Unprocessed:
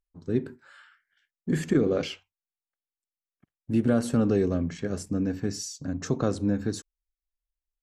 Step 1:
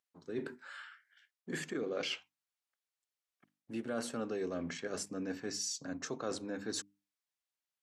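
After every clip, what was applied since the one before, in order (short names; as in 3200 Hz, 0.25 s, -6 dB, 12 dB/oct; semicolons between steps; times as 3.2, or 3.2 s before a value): weighting filter A; reverse; compressor 4:1, threshold -39 dBFS, peak gain reduction 13 dB; reverse; notches 50/100/150/200/250/300 Hz; gain +3 dB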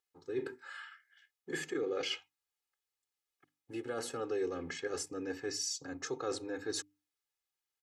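comb 2.4 ms, depth 87%; gain -1.5 dB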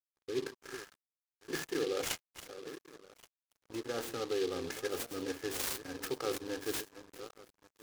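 regenerating reverse delay 0.563 s, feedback 52%, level -10 dB; crossover distortion -50.5 dBFS; noise-modulated delay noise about 3500 Hz, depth 0.07 ms; gain +2 dB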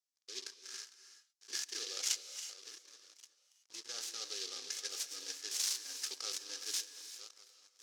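band-pass 5700 Hz, Q 2.2; reverb, pre-delay 3 ms, DRR 11 dB; gain +9 dB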